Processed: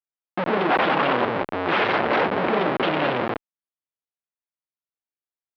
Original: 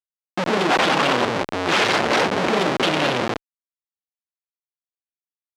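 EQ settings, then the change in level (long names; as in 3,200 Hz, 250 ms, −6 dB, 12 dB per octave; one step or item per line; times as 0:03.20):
Gaussian smoothing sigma 2.9 samples
low-shelf EQ 290 Hz −4 dB
0.0 dB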